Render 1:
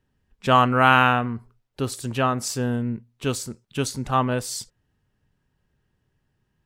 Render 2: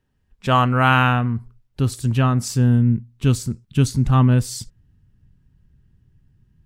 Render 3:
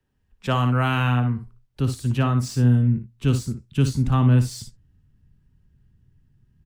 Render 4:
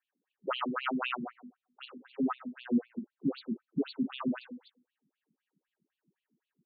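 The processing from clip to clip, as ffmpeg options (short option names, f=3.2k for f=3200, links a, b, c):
-af "asubboost=boost=8:cutoff=210"
-filter_complex "[0:a]aecho=1:1:57|72:0.335|0.15,acrossover=split=440|3000[a][b][c];[b]acompressor=threshold=-20dB:ratio=6[d];[a][d][c]amix=inputs=3:normalize=0,acrossover=split=180|390|5400[e][f][g][h];[h]asoftclip=type=tanh:threshold=-36.5dB[i];[e][f][g][i]amix=inputs=4:normalize=0,volume=-3dB"
-af "bandreject=f=49.34:t=h:w=4,bandreject=f=98.68:t=h:w=4,bandreject=f=148.02:t=h:w=4,bandreject=f=197.36:t=h:w=4,bandreject=f=246.7:t=h:w=4,bandreject=f=296.04:t=h:w=4,bandreject=f=345.38:t=h:w=4,bandreject=f=394.72:t=h:w=4,bandreject=f=444.06:t=h:w=4,bandreject=f=493.4:t=h:w=4,bandreject=f=542.74:t=h:w=4,bandreject=f=592.08:t=h:w=4,bandreject=f=641.42:t=h:w=4,bandreject=f=690.76:t=h:w=4,bandreject=f=740.1:t=h:w=4,bandreject=f=789.44:t=h:w=4,bandreject=f=838.78:t=h:w=4,bandreject=f=888.12:t=h:w=4,bandreject=f=937.46:t=h:w=4,bandreject=f=986.8:t=h:w=4,bandreject=f=1.03614k:t=h:w=4,bandreject=f=1.08548k:t=h:w=4,bandreject=f=1.13482k:t=h:w=4,bandreject=f=1.18416k:t=h:w=4,bandreject=f=1.2335k:t=h:w=4,bandreject=f=1.28284k:t=h:w=4,bandreject=f=1.33218k:t=h:w=4,bandreject=f=1.38152k:t=h:w=4,bandreject=f=1.43086k:t=h:w=4,bandreject=f=1.4802k:t=h:w=4,bandreject=f=1.52954k:t=h:w=4,bandreject=f=1.57888k:t=h:w=4,bandreject=f=1.62822k:t=h:w=4,bandreject=f=1.67756k:t=h:w=4,bandreject=f=1.7269k:t=h:w=4,bandreject=f=1.77624k:t=h:w=4,bandreject=f=1.82558k:t=h:w=4,bandreject=f=1.87492k:t=h:w=4,bandreject=f=1.92426k:t=h:w=4,asoftclip=type=tanh:threshold=-11.5dB,afftfilt=real='re*between(b*sr/1024,240*pow(3300/240,0.5+0.5*sin(2*PI*3.9*pts/sr))/1.41,240*pow(3300/240,0.5+0.5*sin(2*PI*3.9*pts/sr))*1.41)':imag='im*between(b*sr/1024,240*pow(3300/240,0.5+0.5*sin(2*PI*3.9*pts/sr))/1.41,240*pow(3300/240,0.5+0.5*sin(2*PI*3.9*pts/sr))*1.41)':win_size=1024:overlap=0.75"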